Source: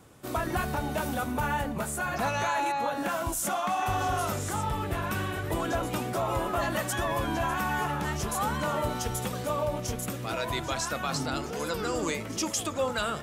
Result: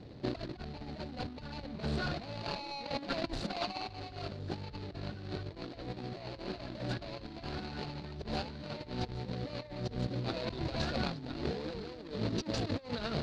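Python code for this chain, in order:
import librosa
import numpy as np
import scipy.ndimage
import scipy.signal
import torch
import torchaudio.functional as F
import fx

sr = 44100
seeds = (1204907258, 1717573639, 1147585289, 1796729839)

y = scipy.signal.medfilt(x, 41)
y = fx.over_compress(y, sr, threshold_db=-39.0, ratio=-0.5)
y = fx.lowpass_res(y, sr, hz=4300.0, q=6.3)
y = y * librosa.db_to_amplitude(1.0)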